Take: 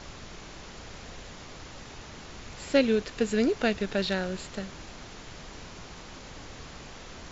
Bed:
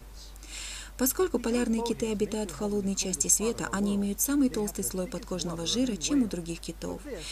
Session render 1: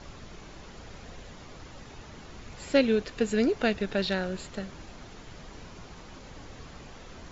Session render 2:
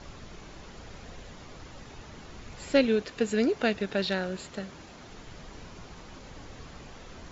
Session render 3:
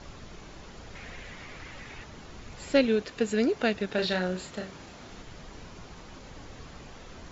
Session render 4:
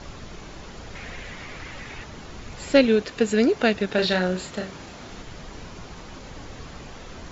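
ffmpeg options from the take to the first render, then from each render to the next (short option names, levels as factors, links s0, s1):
-af "afftdn=nr=6:nf=-46"
-filter_complex "[0:a]asettb=1/sr,asplit=3[s0][s1][s2];[s0]atrim=end=2.864[s3];[s1]atrim=start=2.86:end=5.09,asetpts=PTS-STARTPTS,afade=t=in:d=0.004:c=qsin,afade=t=out:st=2.226:d=0.004:c=qsin,highpass=f=110:p=1[s4];[s2]atrim=start=5.086[s5];[s3][s4]acrossfade=d=0.004:c1=hsin:c2=qsin[s6];[s6][s5]acrossfade=d=0.004:c1=qsin:c2=hsin"
-filter_complex "[0:a]asettb=1/sr,asplit=3[s0][s1][s2];[s0]atrim=end=0.954[s3];[s1]atrim=start=0.95:end=2.04,asetpts=PTS-STARTPTS,afade=t=in:d=0.004:c=qsin,afade=t=out:st=1.086:d=0.004:c=qsin,equalizer=f=2100:t=o:w=0.95:g=11[s4];[s2]atrim=start=2.036[s5];[s3][s4]acrossfade=d=0.004:c1=hsin:c2=qsin[s6];[s6][s5]acrossfade=d=0.004:c1=qsin:c2=hsin,asettb=1/sr,asplit=3[s7][s8][s9];[s7]atrim=end=3.904[s10];[s8]atrim=start=3.9:end=5.22,asetpts=PTS-STARTPTS,afade=t=in:d=0.004:c=qsin,afade=t=out:st=1.316:d=0.004:c=qsin,asplit=2[s11][s12];[s12]adelay=33,volume=0.596[s13];[s11][s13]amix=inputs=2:normalize=0,atrim=end_sample=58212[s14];[s9]atrim=start=5.216[s15];[s10][s14]acrossfade=d=0.004:c1=hsin:c2=qsin[s16];[s16][s15]acrossfade=d=0.004:c1=qsin:c2=hsin"
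-af "volume=2"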